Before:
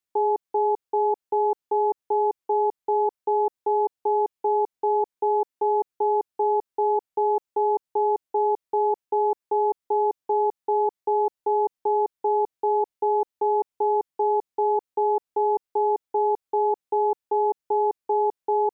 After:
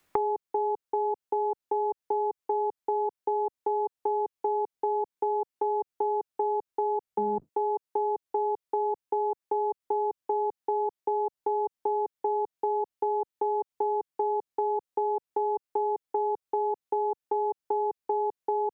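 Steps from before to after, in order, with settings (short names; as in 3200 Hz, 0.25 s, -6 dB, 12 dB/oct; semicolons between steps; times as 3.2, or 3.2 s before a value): 7.04–7.49 octaver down 1 oct, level +1 dB; three-band squash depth 100%; gain -6 dB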